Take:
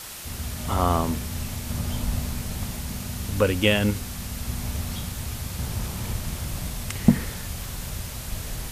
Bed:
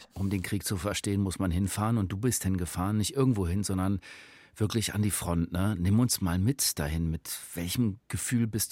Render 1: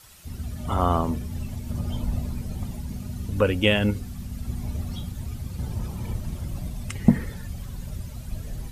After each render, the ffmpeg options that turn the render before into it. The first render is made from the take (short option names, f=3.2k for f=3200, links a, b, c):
-af "afftdn=nr=14:nf=-36"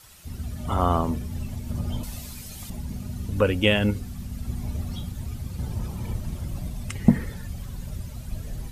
-filter_complex "[0:a]asettb=1/sr,asplit=3[a][b][c];[a]atrim=end=2.034[d];[b]atrim=start=2.03:end=2.7,asetpts=PTS-STARTPTS,afade=t=in:d=0.004:c=qsin,afade=t=out:st=0.666:d=0.004:c=qsin,tiltshelf=f=1.4k:g=-10[e];[c]atrim=start=2.696[f];[d][e]acrossfade=d=0.004:c1=hsin:c2=qsin[g];[g][f]acrossfade=d=0.004:c1=qsin:c2=hsin"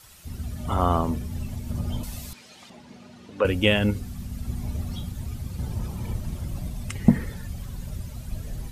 -filter_complex "[0:a]asettb=1/sr,asplit=3[a][b][c];[a]atrim=end=2.334[d];[b]atrim=start=2.33:end=3.45,asetpts=PTS-STARTPTS,afade=t=in:d=0.004:c=qsin,afade=t=out:st=1.116:d=0.004:c=qsin,highpass=360,lowpass=4.2k[e];[c]atrim=start=3.446[f];[d][e]acrossfade=d=0.004:c1=hsin:c2=qsin[g];[g][f]acrossfade=d=0.004:c1=qsin:c2=hsin"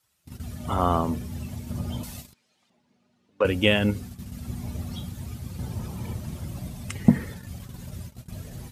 -af "agate=range=-21dB:threshold=-34dB:ratio=16:detection=peak,highpass=84"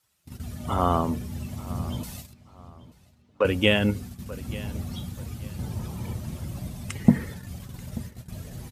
-filter_complex "[0:a]asplit=2[a][b];[b]adelay=885,lowpass=f=4k:p=1,volume=-18dB,asplit=2[c][d];[d]adelay=885,lowpass=f=4k:p=1,volume=0.3,asplit=2[e][f];[f]adelay=885,lowpass=f=4k:p=1,volume=0.3[g];[a][c][e][g]amix=inputs=4:normalize=0"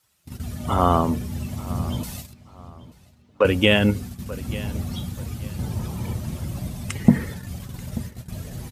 -af "volume=4.5dB,alimiter=limit=-1dB:level=0:latency=1"